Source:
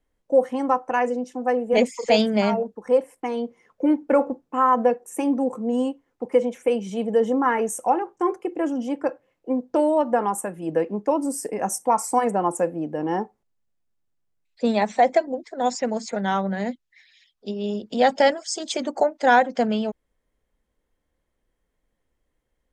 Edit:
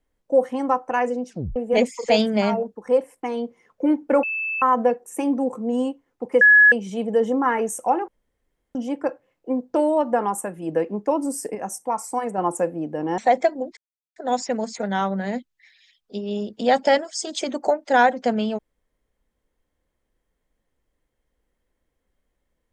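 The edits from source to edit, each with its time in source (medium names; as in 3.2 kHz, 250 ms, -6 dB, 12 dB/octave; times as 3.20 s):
1.29 s: tape stop 0.27 s
4.23–4.62 s: bleep 2.63 kHz -23.5 dBFS
6.41–6.72 s: bleep 1.69 kHz -8.5 dBFS
8.08–8.75 s: room tone
11.55–12.38 s: gain -5 dB
13.18–14.90 s: delete
15.49 s: insert silence 0.39 s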